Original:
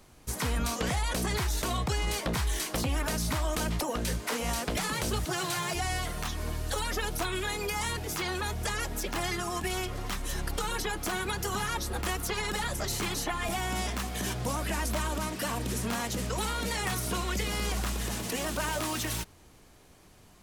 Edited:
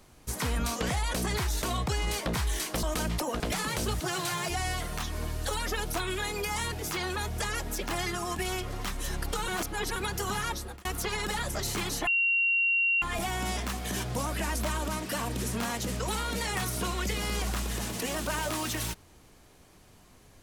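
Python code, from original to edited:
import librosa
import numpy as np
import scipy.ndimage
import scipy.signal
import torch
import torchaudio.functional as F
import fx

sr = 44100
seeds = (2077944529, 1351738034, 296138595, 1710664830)

y = fx.edit(x, sr, fx.cut(start_s=2.83, length_s=0.61),
    fx.cut(start_s=4.01, length_s=0.64),
    fx.reverse_span(start_s=10.73, length_s=0.48),
    fx.fade_out_span(start_s=11.74, length_s=0.36),
    fx.insert_tone(at_s=13.32, length_s=0.95, hz=2750.0, db=-22.5), tone=tone)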